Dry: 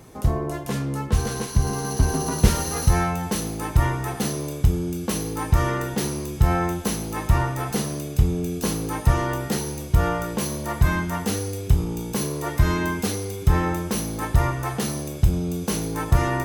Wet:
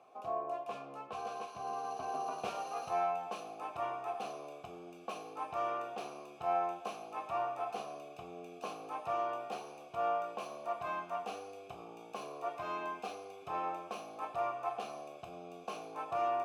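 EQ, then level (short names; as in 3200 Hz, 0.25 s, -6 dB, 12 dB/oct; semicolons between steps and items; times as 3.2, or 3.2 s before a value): vowel filter a; HPF 90 Hz; low shelf 200 Hz -10.5 dB; +1.0 dB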